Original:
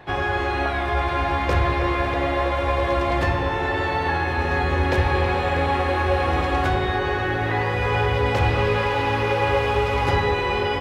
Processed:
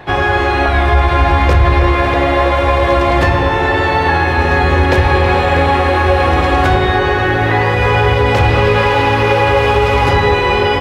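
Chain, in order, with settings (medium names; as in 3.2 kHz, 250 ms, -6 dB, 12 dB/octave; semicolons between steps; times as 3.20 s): 0.68–1.96 s: bass shelf 70 Hz +12 dB; loudness maximiser +11 dB; trim -1 dB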